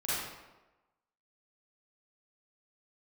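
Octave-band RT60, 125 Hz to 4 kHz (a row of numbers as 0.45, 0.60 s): 0.90, 1.0, 1.1, 1.1, 0.90, 0.75 s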